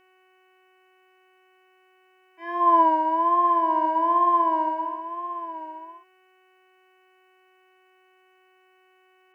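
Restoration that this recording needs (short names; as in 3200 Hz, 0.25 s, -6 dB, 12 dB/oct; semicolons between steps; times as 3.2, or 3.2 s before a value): de-hum 372.5 Hz, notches 8; inverse comb 1.023 s -12 dB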